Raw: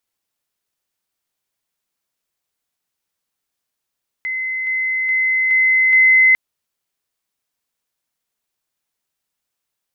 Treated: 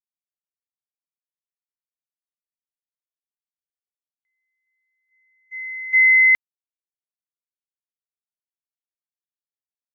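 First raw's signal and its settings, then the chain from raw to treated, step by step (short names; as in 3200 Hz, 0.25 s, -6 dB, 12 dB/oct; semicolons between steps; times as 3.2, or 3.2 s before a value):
level ladder 2050 Hz -20 dBFS, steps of 3 dB, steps 5, 0.42 s 0.00 s
gate -12 dBFS, range -55 dB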